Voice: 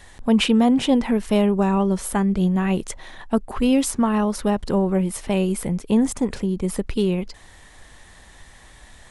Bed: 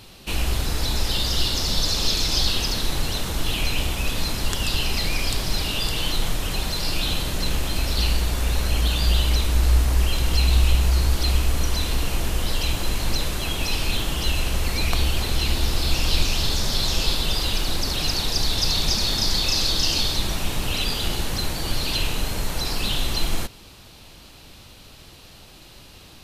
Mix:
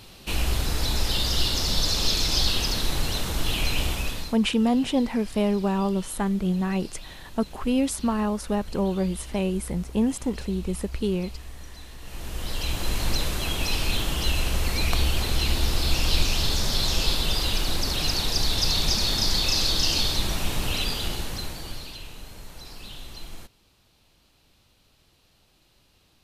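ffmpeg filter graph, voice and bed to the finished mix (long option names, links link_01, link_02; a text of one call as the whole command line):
ffmpeg -i stem1.wav -i stem2.wav -filter_complex "[0:a]adelay=4050,volume=-5dB[link_01];[1:a]volume=17dB,afade=type=out:start_time=3.91:duration=0.47:silence=0.11885,afade=type=in:start_time=12:duration=1.01:silence=0.11885,afade=type=out:start_time=20.66:duration=1.31:silence=0.177828[link_02];[link_01][link_02]amix=inputs=2:normalize=0" out.wav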